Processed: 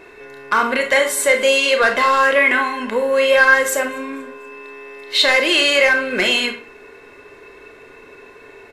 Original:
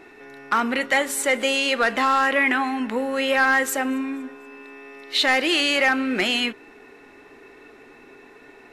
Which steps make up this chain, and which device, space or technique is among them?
microphone above a desk (comb 1.9 ms, depth 52%; reverberation RT60 0.40 s, pre-delay 27 ms, DRR 5 dB); trim +3.5 dB

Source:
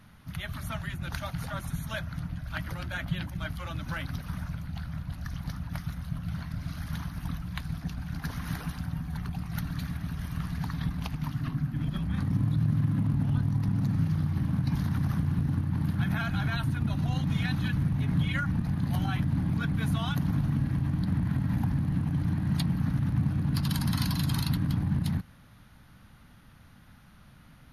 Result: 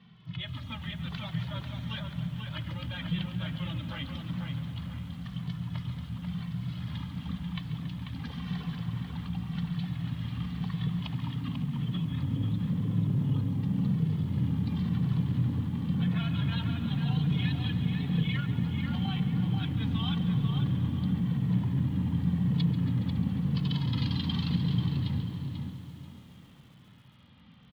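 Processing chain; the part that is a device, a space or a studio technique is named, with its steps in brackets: barber-pole flanger into a guitar amplifier (endless flanger 2.2 ms -0.94 Hz; saturation -24 dBFS, distortion -18 dB; cabinet simulation 84–4200 Hz, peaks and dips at 120 Hz +6 dB, 180 Hz +5 dB, 250 Hz +3 dB, 660 Hz -6 dB, 1.5 kHz -9 dB, 3.2 kHz +10 dB); hum notches 50/100/150/200/250/300/350/400 Hz; tape echo 490 ms, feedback 35%, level -3.5 dB, low-pass 2.9 kHz; bit-crushed delay 139 ms, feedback 80%, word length 9-bit, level -14 dB

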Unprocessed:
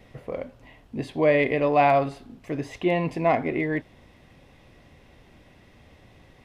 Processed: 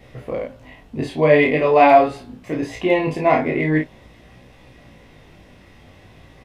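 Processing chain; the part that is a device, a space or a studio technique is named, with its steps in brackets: double-tracked vocal (doubling 32 ms -3.5 dB; chorus 0.44 Hz, delay 16.5 ms, depth 4.4 ms); trim +8 dB

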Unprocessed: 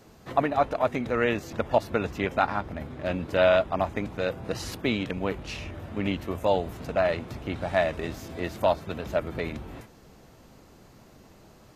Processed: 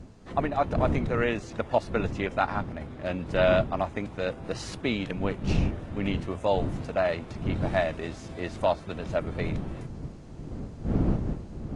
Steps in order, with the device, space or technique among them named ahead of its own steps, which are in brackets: smartphone video outdoors (wind noise 190 Hz -31 dBFS; level rider gain up to 3.5 dB; trim -5 dB; AAC 64 kbps 22.05 kHz)

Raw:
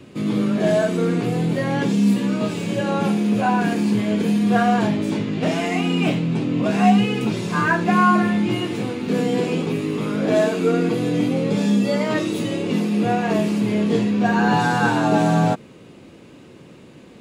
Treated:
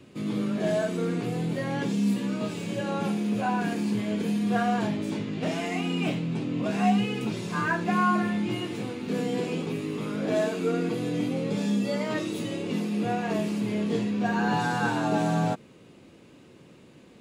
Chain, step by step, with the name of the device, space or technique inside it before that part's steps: exciter from parts (in parallel at -11 dB: high-pass 3.5 kHz 6 dB/octave + saturation -25.5 dBFS, distortion -17 dB); on the sum: trim -8 dB

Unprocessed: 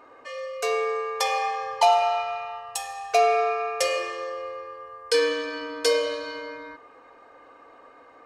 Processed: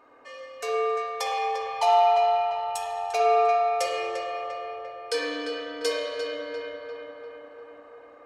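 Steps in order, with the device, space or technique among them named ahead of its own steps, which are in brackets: dub delay into a spring reverb (filtered feedback delay 347 ms, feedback 68%, low-pass 2.7 kHz, level -5 dB; spring tank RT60 1.4 s, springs 54 ms, chirp 20 ms, DRR 1 dB); trim -6 dB

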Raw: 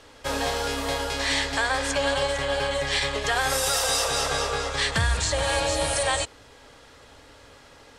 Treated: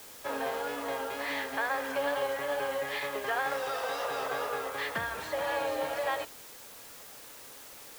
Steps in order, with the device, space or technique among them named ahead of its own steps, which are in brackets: wax cylinder (band-pass 270–2000 Hz; wow and flutter; white noise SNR 15 dB); trim -5 dB

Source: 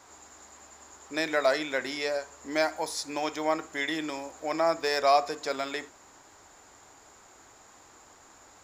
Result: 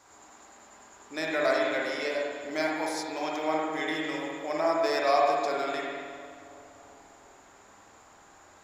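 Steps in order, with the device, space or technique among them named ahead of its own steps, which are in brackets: dub delay into a spring reverb (filtered feedback delay 341 ms, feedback 63%, low-pass 1.5 kHz, level -16.5 dB; spring tank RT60 1.7 s, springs 45/50 ms, chirp 50 ms, DRR -3.5 dB); trim -4.5 dB

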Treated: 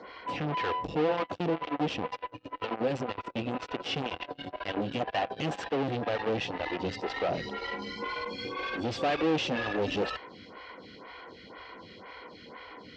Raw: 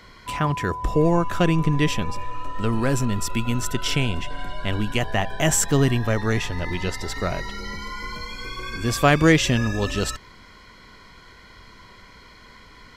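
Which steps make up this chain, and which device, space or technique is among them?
vibe pedal into a guitar amplifier (lamp-driven phase shifter 2 Hz; valve stage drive 33 dB, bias 0.25; cabinet simulation 110–4600 Hz, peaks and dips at 130 Hz -4 dB, 300 Hz +6 dB, 500 Hz +9 dB, 760 Hz +8 dB, 2.8 kHz +5 dB); trim +3 dB

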